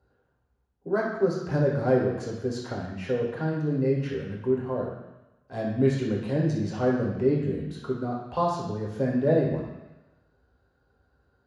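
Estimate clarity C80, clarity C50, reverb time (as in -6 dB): 6.0 dB, 3.5 dB, 1.0 s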